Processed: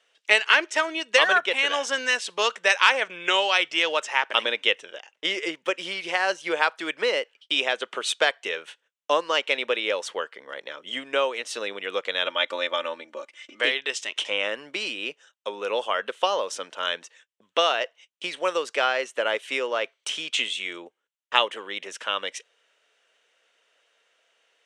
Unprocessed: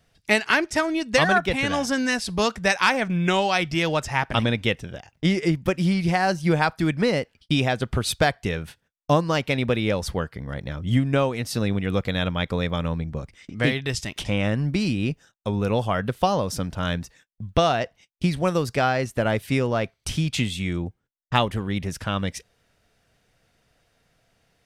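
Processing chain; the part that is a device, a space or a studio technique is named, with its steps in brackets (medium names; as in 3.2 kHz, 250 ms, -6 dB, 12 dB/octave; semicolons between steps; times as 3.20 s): phone speaker on a table (cabinet simulation 460–8300 Hz, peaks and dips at 730 Hz -8 dB, 3 kHz +7 dB, 4.8 kHz -8 dB); 12.26–13.61 s: comb 3.4 ms, depth 80%; trim +1.5 dB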